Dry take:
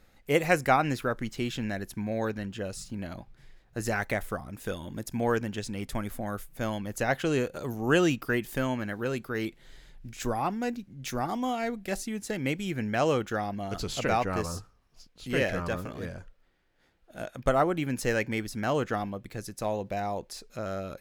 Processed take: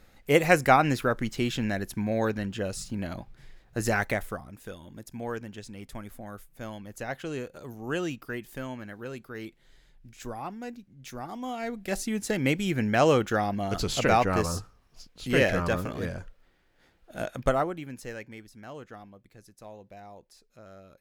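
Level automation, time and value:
0:03.99 +3.5 dB
0:04.71 −7.5 dB
0:11.29 −7.5 dB
0:12.13 +4.5 dB
0:17.37 +4.5 dB
0:17.80 −8.5 dB
0:18.49 −15 dB

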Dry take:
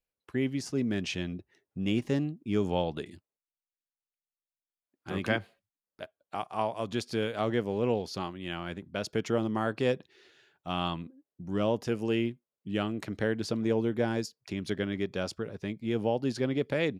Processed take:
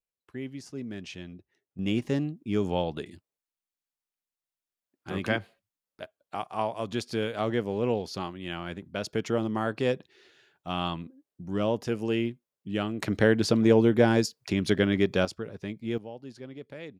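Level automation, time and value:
−7.5 dB
from 0:01.79 +1 dB
from 0:13.02 +8 dB
from 0:15.25 −0.5 dB
from 0:15.98 −13 dB

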